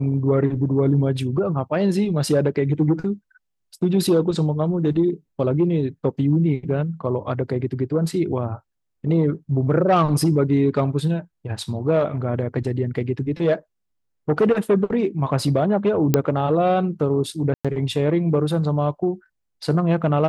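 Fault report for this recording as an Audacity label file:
16.140000	16.140000	click −3 dBFS
17.540000	17.650000	drop-out 106 ms

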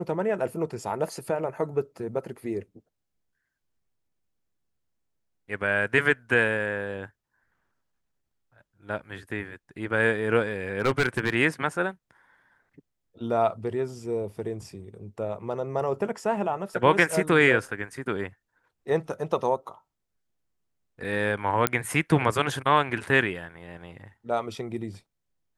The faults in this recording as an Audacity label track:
10.790000	11.340000	clipping −17.5 dBFS
21.670000	21.670000	click −4 dBFS

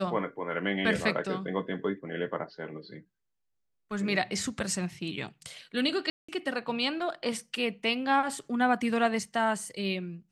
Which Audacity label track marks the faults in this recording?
6.100000	6.290000	drop-out 185 ms

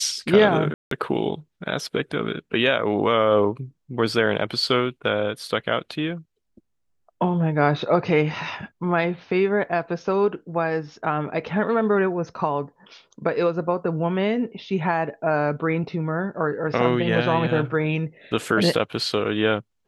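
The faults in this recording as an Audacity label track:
0.740000	0.910000	drop-out 173 ms

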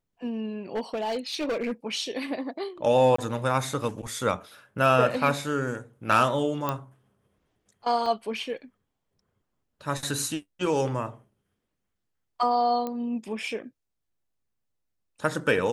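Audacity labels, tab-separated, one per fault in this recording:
0.750000	1.720000	clipping −24.5 dBFS
3.160000	3.180000	drop-out 24 ms
6.690000	6.690000	click −13 dBFS
8.060000	8.060000	drop-out 3.1 ms
12.870000	12.870000	click −19 dBFS

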